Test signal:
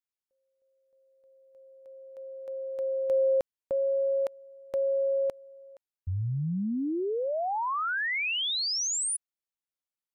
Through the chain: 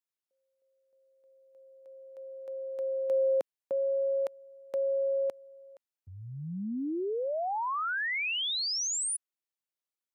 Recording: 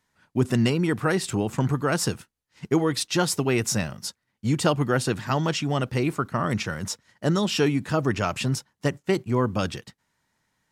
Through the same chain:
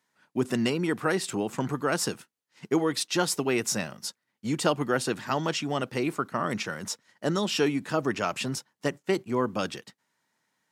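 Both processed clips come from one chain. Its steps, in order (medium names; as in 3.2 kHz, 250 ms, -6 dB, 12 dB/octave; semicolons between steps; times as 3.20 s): high-pass 210 Hz 12 dB/octave; trim -2 dB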